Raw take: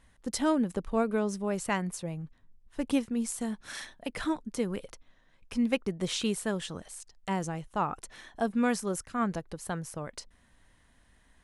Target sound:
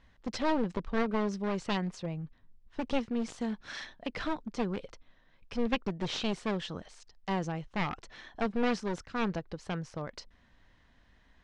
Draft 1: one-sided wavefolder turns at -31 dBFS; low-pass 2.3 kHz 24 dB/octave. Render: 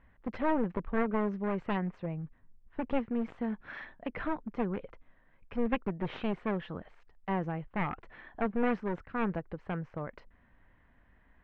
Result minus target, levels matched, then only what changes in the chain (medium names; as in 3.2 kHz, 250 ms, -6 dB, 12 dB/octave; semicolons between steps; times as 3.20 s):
4 kHz band -12.0 dB
change: low-pass 5.4 kHz 24 dB/octave